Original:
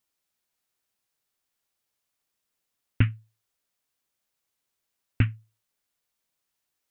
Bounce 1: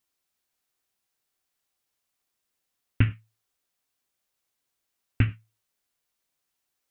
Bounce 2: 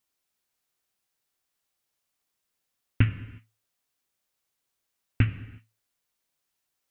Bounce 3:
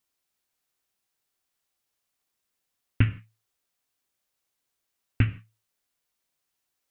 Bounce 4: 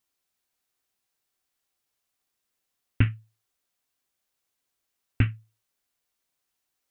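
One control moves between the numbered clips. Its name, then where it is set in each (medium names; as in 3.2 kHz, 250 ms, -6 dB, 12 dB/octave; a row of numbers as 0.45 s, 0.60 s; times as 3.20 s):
gated-style reverb, gate: 130 ms, 390 ms, 190 ms, 80 ms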